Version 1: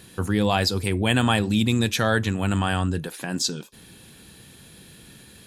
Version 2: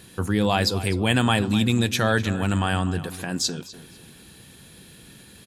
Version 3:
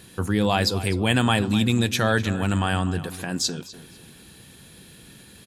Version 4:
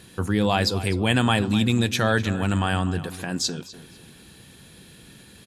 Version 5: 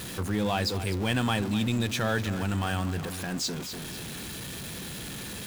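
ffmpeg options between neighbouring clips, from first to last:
ffmpeg -i in.wav -filter_complex "[0:a]asplit=2[link_01][link_02];[link_02]adelay=250,lowpass=frequency=4100:poles=1,volume=-14dB,asplit=2[link_03][link_04];[link_04]adelay=250,lowpass=frequency=4100:poles=1,volume=0.34,asplit=2[link_05][link_06];[link_06]adelay=250,lowpass=frequency=4100:poles=1,volume=0.34[link_07];[link_01][link_03][link_05][link_07]amix=inputs=4:normalize=0" out.wav
ffmpeg -i in.wav -af anull out.wav
ffmpeg -i in.wav -af "highshelf=frequency=12000:gain=-7" out.wav
ffmpeg -i in.wav -af "aeval=exprs='val(0)+0.5*0.0562*sgn(val(0))':channel_layout=same,volume=-8dB" out.wav

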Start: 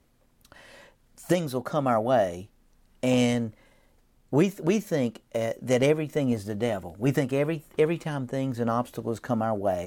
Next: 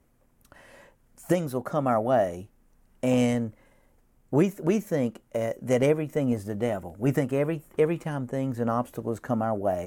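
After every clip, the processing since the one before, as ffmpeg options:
ffmpeg -i in.wav -af "equalizer=frequency=4000:width=1.2:gain=-9.5" out.wav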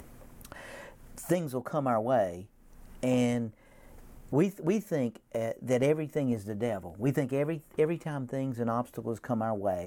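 ffmpeg -i in.wav -af "acompressor=mode=upward:threshold=-30dB:ratio=2.5,volume=-4dB" out.wav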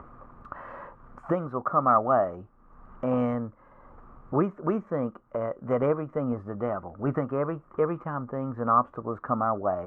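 ffmpeg -i in.wav -af "lowpass=frequency=1200:width_type=q:width=7.8" out.wav

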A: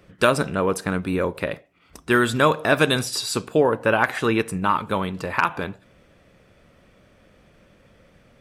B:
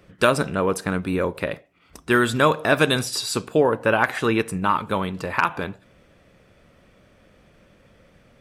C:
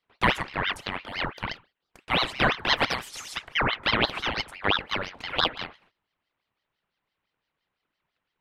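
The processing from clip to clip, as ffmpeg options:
ffmpeg -i in.wav -af anull out.wav
ffmpeg -i in.wav -filter_complex "[0:a]agate=range=-19dB:threshold=-49dB:ratio=16:detection=peak,acrossover=split=460 3100:gain=0.158 1 0.224[link_01][link_02][link_03];[link_01][link_02][link_03]amix=inputs=3:normalize=0,aeval=exprs='val(0)*sin(2*PI*1500*n/s+1500*0.75/5.9*sin(2*PI*5.9*n/s))':channel_layout=same" out.wav

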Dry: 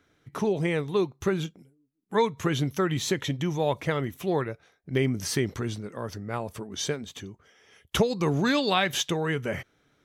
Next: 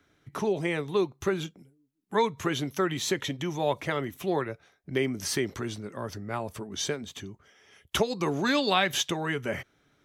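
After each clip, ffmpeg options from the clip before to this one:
ffmpeg -i in.wav -filter_complex "[0:a]bandreject=frequency=480:width=12,acrossover=split=240|1100[link_01][link_02][link_03];[link_01]acompressor=threshold=-38dB:ratio=6[link_04];[link_04][link_02][link_03]amix=inputs=3:normalize=0" out.wav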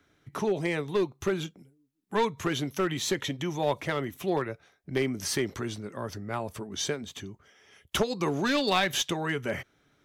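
ffmpeg -i in.wav -af "aeval=exprs='clip(val(0),-1,0.0794)':channel_layout=same" out.wav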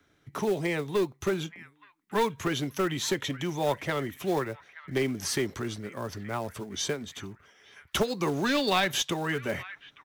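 ffmpeg -i in.wav -filter_complex "[0:a]acrossover=split=300|1400|2200[link_01][link_02][link_03][link_04];[link_02]acrusher=bits=4:mode=log:mix=0:aa=0.000001[link_05];[link_03]aecho=1:1:875|1750|2625|3500:0.473|0.166|0.058|0.0203[link_06];[link_01][link_05][link_06][link_04]amix=inputs=4:normalize=0" out.wav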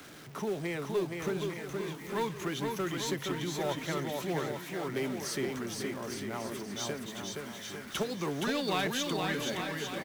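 ffmpeg -i in.wav -af "aeval=exprs='val(0)+0.5*0.015*sgn(val(0))':channel_layout=same,lowshelf=frequency=120:width_type=q:width=1.5:gain=-7,aecho=1:1:470|846|1147|1387|1580:0.631|0.398|0.251|0.158|0.1,volume=-8dB" out.wav

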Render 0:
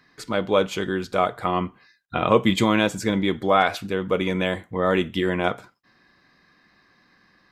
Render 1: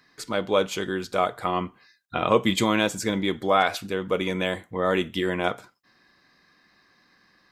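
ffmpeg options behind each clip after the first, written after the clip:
ffmpeg -i in.wav -af "bass=frequency=250:gain=-3,treble=frequency=4000:gain=5,volume=-2dB" out.wav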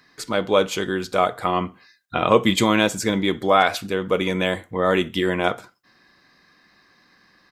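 ffmpeg -i in.wav -filter_complex "[0:a]asplit=2[link_01][link_02];[link_02]adelay=65,lowpass=frequency=2000:poles=1,volume=-23.5dB,asplit=2[link_03][link_04];[link_04]adelay=65,lowpass=frequency=2000:poles=1,volume=0.25[link_05];[link_01][link_03][link_05]amix=inputs=3:normalize=0,volume=4dB" out.wav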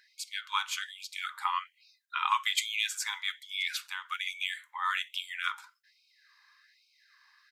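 ffmpeg -i in.wav -af "afftfilt=real='re*gte(b*sr/1024,790*pow(2200/790,0.5+0.5*sin(2*PI*1.2*pts/sr)))':imag='im*gte(b*sr/1024,790*pow(2200/790,0.5+0.5*sin(2*PI*1.2*pts/sr)))':win_size=1024:overlap=0.75,volume=-5.5dB" out.wav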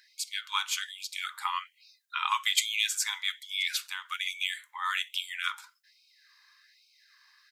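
ffmpeg -i in.wav -af "highshelf=frequency=2400:gain=9.5,volume=-3dB" out.wav

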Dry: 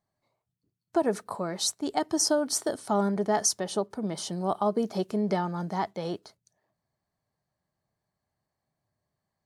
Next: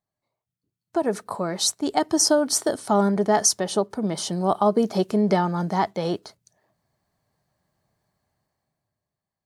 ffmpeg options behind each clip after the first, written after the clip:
ffmpeg -i in.wav -af "dynaudnorm=framelen=120:gausssize=17:maxgain=15dB,volume=-5.5dB" out.wav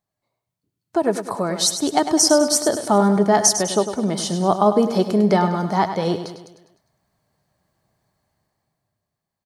ffmpeg -i in.wav -af "aecho=1:1:101|202|303|404|505|606:0.316|0.161|0.0823|0.0419|0.0214|0.0109,volume=3.5dB" out.wav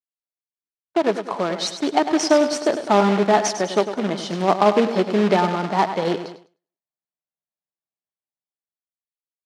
ffmpeg -i in.wav -af "acrusher=bits=2:mode=log:mix=0:aa=0.000001,highpass=210,lowpass=3500,agate=range=-33dB:threshold=-32dB:ratio=3:detection=peak" out.wav

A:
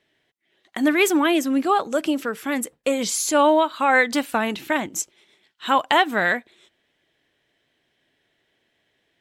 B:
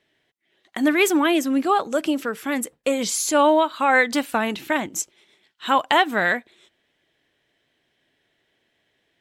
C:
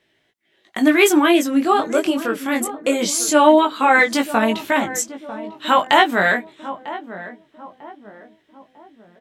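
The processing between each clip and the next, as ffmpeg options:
ffmpeg -i in.wav -af anull out.wav
ffmpeg -i in.wav -filter_complex "[0:a]asplit=2[link_01][link_02];[link_02]adelay=947,lowpass=frequency=930:poles=1,volume=-12.5dB,asplit=2[link_03][link_04];[link_04]adelay=947,lowpass=frequency=930:poles=1,volume=0.49,asplit=2[link_05][link_06];[link_06]adelay=947,lowpass=frequency=930:poles=1,volume=0.49,asplit=2[link_07][link_08];[link_08]adelay=947,lowpass=frequency=930:poles=1,volume=0.49,asplit=2[link_09][link_10];[link_10]adelay=947,lowpass=frequency=930:poles=1,volume=0.49[link_11];[link_01][link_03][link_05][link_07][link_09][link_11]amix=inputs=6:normalize=0,flanger=delay=18:depth=4:speed=0.22,volume=7dB" out.wav

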